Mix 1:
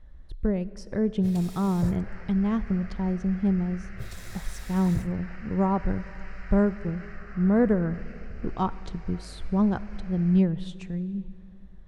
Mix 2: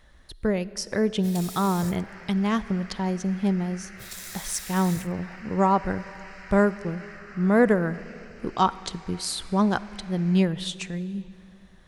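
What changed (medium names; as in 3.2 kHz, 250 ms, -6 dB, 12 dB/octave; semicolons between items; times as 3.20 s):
speech +8.0 dB; master: add tilt EQ +3.5 dB/octave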